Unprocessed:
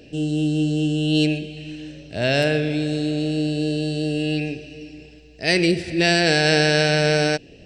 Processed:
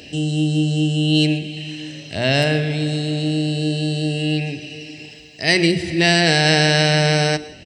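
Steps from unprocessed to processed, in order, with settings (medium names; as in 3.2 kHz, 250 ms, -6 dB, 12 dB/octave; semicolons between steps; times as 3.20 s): high-pass 59 Hz; hum notches 60/120/180/240/300 Hz; comb 1 ms, depth 39%; plate-style reverb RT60 0.56 s, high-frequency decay 0.8×, pre-delay 95 ms, DRR 17.5 dB; tape noise reduction on one side only encoder only; trim +3 dB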